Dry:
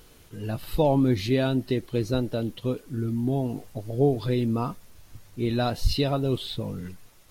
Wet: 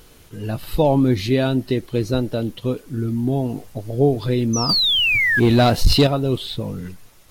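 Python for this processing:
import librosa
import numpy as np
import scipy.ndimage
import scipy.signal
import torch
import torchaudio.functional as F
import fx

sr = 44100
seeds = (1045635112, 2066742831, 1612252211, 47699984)

y = fx.spec_paint(x, sr, seeds[0], shape='fall', start_s=4.53, length_s=0.87, low_hz=1600.0, high_hz=6200.0, level_db=-30.0)
y = fx.leveller(y, sr, passes=2, at=(4.69, 6.07))
y = F.gain(torch.from_numpy(y), 5.0).numpy()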